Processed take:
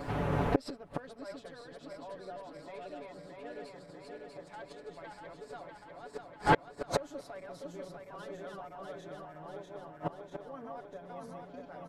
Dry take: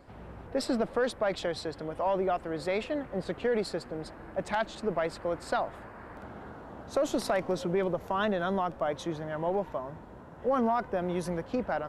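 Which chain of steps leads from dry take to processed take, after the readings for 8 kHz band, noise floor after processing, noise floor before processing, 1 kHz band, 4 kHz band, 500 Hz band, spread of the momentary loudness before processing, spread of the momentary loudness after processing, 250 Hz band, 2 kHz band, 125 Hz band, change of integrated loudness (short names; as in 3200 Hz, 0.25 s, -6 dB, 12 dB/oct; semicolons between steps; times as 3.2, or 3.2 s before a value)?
-8.0 dB, -54 dBFS, -48 dBFS, -5.0 dB, -8.0 dB, -9.5 dB, 16 LU, 17 LU, -7.5 dB, -4.5 dB, -1.0 dB, -8.0 dB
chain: regenerating reverse delay 0.322 s, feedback 79%, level -2 dB; flipped gate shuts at -24 dBFS, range -34 dB; comb 7 ms, depth 76%; gain +13 dB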